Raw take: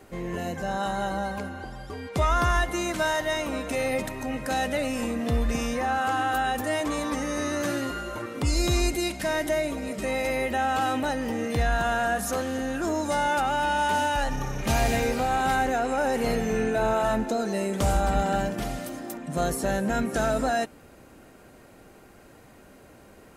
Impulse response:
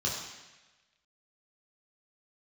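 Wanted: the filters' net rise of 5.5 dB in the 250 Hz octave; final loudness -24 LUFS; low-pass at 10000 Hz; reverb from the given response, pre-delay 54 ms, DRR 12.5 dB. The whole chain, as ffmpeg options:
-filter_complex "[0:a]lowpass=10k,equalizer=f=250:t=o:g=6.5,asplit=2[a][b];[1:a]atrim=start_sample=2205,adelay=54[c];[b][c]afir=irnorm=-1:irlink=0,volume=-19.5dB[d];[a][d]amix=inputs=2:normalize=0,volume=0.5dB"

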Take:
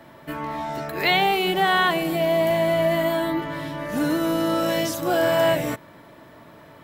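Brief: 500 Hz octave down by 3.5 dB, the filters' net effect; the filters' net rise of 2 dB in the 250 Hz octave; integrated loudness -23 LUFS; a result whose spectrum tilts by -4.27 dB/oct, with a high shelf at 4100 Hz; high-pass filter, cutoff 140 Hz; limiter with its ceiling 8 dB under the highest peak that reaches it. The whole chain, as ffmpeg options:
-af "highpass=140,equalizer=f=250:t=o:g=7.5,equalizer=f=500:t=o:g=-8,highshelf=f=4.1k:g=6,volume=2dB,alimiter=limit=-13.5dB:level=0:latency=1"

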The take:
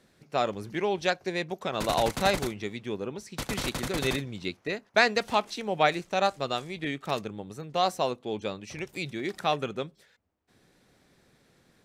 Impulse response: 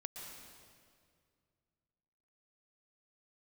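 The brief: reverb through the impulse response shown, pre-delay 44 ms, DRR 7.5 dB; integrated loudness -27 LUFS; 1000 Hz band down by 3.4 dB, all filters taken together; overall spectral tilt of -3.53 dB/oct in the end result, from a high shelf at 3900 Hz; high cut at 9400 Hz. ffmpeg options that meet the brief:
-filter_complex "[0:a]lowpass=9.4k,equalizer=f=1k:t=o:g=-4.5,highshelf=f=3.9k:g=-8,asplit=2[a][b];[1:a]atrim=start_sample=2205,adelay=44[c];[b][c]afir=irnorm=-1:irlink=0,volume=-5dB[d];[a][d]amix=inputs=2:normalize=0,volume=4dB"

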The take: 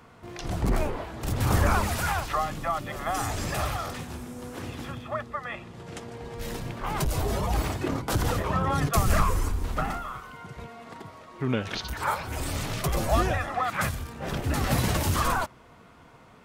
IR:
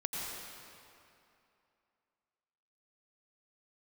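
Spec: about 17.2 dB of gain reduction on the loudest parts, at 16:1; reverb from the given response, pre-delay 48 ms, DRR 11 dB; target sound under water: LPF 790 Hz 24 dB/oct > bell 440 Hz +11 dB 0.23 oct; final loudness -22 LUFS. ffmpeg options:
-filter_complex "[0:a]acompressor=threshold=-34dB:ratio=16,asplit=2[a][b];[1:a]atrim=start_sample=2205,adelay=48[c];[b][c]afir=irnorm=-1:irlink=0,volume=-14.5dB[d];[a][d]amix=inputs=2:normalize=0,lowpass=f=790:w=0.5412,lowpass=f=790:w=1.3066,equalizer=f=440:t=o:w=0.23:g=11,volume=18dB"

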